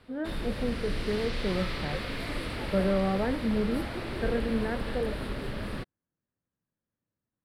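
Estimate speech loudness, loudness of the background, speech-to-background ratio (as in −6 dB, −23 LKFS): −32.0 LKFS, −35.5 LKFS, 3.5 dB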